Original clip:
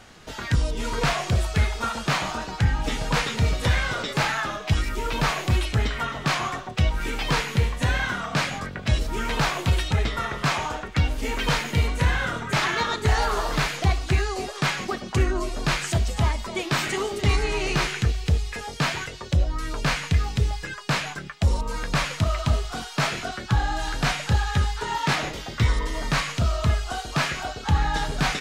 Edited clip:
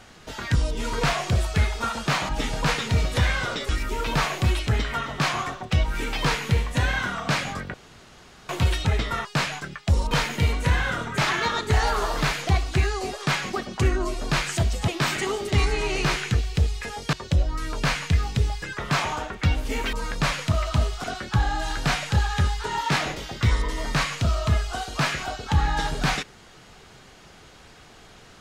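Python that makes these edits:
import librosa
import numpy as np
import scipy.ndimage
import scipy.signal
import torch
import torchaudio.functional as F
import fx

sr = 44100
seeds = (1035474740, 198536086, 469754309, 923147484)

y = fx.edit(x, sr, fx.cut(start_s=2.29, length_s=0.48),
    fx.cut(start_s=4.17, length_s=0.58),
    fx.room_tone_fill(start_s=8.8, length_s=0.75),
    fx.swap(start_s=10.31, length_s=1.15, other_s=20.79, other_length_s=0.86),
    fx.cut(start_s=16.23, length_s=0.36),
    fx.cut(start_s=18.84, length_s=0.3),
    fx.cut(start_s=22.76, length_s=0.45), tone=tone)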